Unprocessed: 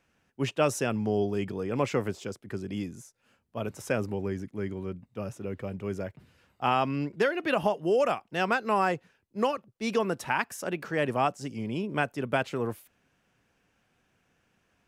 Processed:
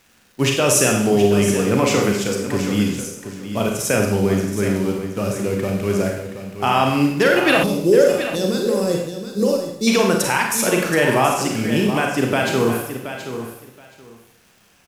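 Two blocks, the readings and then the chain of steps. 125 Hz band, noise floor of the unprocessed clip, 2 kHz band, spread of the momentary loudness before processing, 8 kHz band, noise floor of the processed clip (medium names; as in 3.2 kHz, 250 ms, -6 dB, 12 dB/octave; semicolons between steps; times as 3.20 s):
+12.0 dB, -72 dBFS, +11.0 dB, 12 LU, +21.0 dB, -55 dBFS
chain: in parallel at -11 dB: bit crusher 7-bit; on the sum: peak limiter -16.5 dBFS, peak gain reduction 8 dB; treble shelf 3.8 kHz +9.5 dB; resampled via 32 kHz; crackle 410 per s -53 dBFS; Schroeder reverb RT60 0.74 s, combs from 31 ms, DRR 1 dB; time-frequency box 7.63–9.88 s, 590–3400 Hz -18 dB; on a send: feedback delay 725 ms, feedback 17%, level -10.5 dB; on the sum: trim +8.5 dB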